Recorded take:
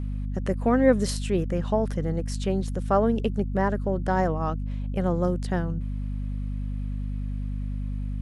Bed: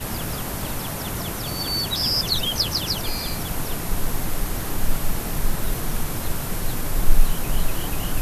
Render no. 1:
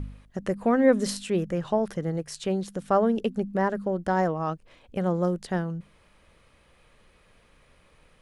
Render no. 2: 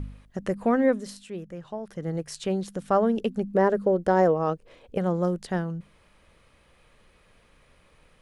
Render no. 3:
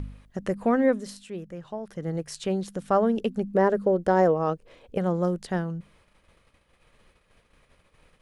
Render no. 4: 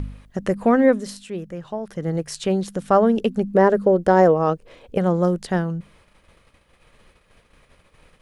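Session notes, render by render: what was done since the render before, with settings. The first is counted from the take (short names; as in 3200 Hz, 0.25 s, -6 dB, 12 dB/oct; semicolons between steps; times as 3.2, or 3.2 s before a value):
de-hum 50 Hz, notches 5
0.69–2.23 dip -10.5 dB, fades 0.34 s equal-power; 3.54–4.98 bell 460 Hz +10 dB
gate -58 dBFS, range -8 dB
gain +6 dB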